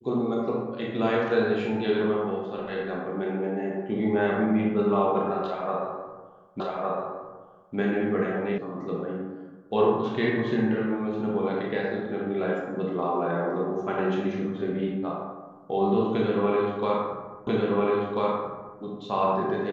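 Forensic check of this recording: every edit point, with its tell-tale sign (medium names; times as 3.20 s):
6.60 s: repeat of the last 1.16 s
8.58 s: sound stops dead
17.47 s: repeat of the last 1.34 s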